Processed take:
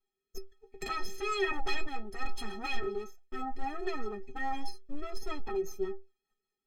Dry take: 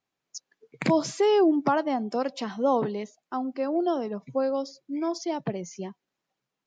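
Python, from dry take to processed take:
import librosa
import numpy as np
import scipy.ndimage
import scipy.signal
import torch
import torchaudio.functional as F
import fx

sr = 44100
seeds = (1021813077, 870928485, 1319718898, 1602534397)

y = fx.lower_of_two(x, sr, delay_ms=4.5)
y = fx.low_shelf(y, sr, hz=370.0, db=9.5)
y = fx.fold_sine(y, sr, drive_db=10, ceiling_db=-13.0)
y = fx.stiff_resonator(y, sr, f0_hz=380.0, decay_s=0.24, stiffness=0.03)
y = fx.rotary_switch(y, sr, hz=1.1, then_hz=5.0, switch_at_s=2.77)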